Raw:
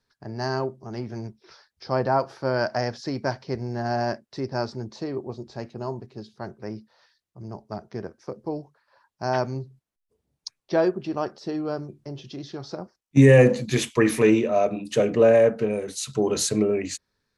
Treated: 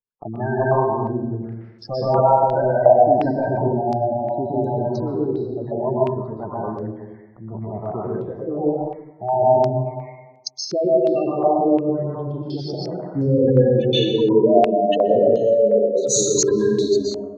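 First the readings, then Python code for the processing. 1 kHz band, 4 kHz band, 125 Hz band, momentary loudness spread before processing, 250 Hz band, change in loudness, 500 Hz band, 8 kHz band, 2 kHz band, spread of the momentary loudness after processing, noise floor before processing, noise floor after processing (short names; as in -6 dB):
+9.5 dB, +6.0 dB, +2.5 dB, 20 LU, +3.5 dB, +4.5 dB, +6.0 dB, +8.0 dB, n/a, 14 LU, -82 dBFS, -44 dBFS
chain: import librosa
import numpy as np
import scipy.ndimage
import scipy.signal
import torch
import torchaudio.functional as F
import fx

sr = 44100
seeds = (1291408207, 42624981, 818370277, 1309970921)

y = fx.rattle_buzz(x, sr, strikes_db=-23.0, level_db=-24.0)
y = fx.echo_banded(y, sr, ms=105, feedback_pct=71, hz=860.0, wet_db=-7)
y = fx.leveller(y, sr, passes=5)
y = fx.spec_gate(y, sr, threshold_db=-10, keep='strong')
y = fx.rev_plate(y, sr, seeds[0], rt60_s=1.1, hf_ratio=0.85, predelay_ms=110, drr_db=-5.0)
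y = fx.filter_held_lowpass(y, sr, hz=2.8, low_hz=770.0, high_hz=6800.0)
y = F.gain(torch.from_numpy(y), -14.0).numpy()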